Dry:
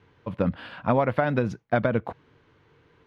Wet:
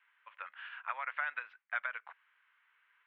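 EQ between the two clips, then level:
high-pass filter 1,400 Hz 24 dB per octave
low-pass filter 3,000 Hz 24 dB per octave
high-frequency loss of the air 250 metres
0.0 dB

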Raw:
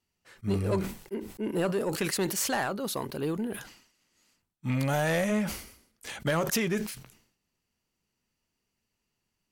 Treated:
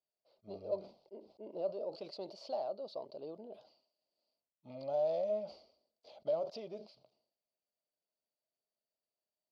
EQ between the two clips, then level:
pair of resonant band-passes 1,700 Hz, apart 2.9 octaves
high-frequency loss of the air 340 metres
+2.0 dB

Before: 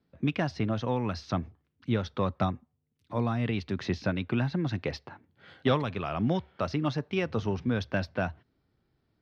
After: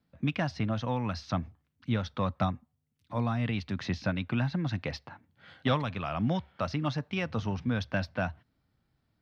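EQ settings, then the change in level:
parametric band 390 Hz −9.5 dB 0.59 octaves
0.0 dB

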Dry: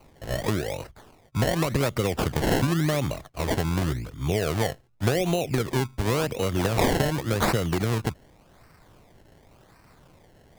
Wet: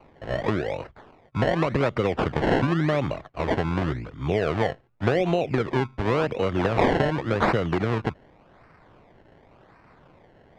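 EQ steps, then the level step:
low-pass filter 2,400 Hz 12 dB per octave
low-shelf EQ 150 Hz −8 dB
+3.5 dB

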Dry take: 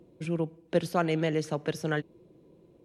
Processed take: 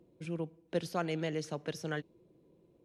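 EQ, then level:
dynamic equaliser 5,200 Hz, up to +5 dB, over −51 dBFS, Q 0.86
−7.5 dB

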